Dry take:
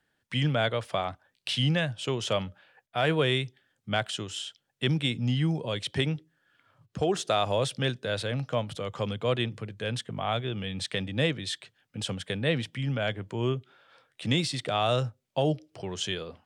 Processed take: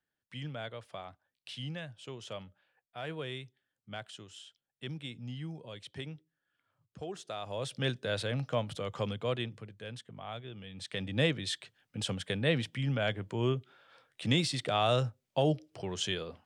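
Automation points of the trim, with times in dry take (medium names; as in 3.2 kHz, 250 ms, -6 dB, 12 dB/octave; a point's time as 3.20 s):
7.41 s -14.5 dB
7.89 s -3 dB
9.01 s -3 dB
10.00 s -13 dB
10.71 s -13 dB
11.13 s -2 dB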